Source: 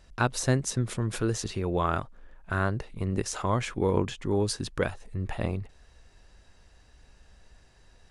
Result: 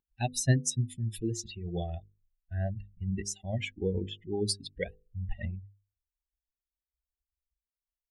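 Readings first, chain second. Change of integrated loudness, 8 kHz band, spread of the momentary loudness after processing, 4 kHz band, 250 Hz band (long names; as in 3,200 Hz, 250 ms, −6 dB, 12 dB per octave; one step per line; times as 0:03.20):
−4.0 dB, −0.5 dB, 12 LU, −1.5 dB, −5.5 dB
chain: spectral dynamics exaggerated over time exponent 3
elliptic band-stop filter 770–1,800 Hz
parametric band 460 Hz −5.5 dB 2 octaves
pitch vibrato 1 Hz 17 cents
mains-hum notches 50/100/150/200/250/300/350/400/450/500 Hz
level +5.5 dB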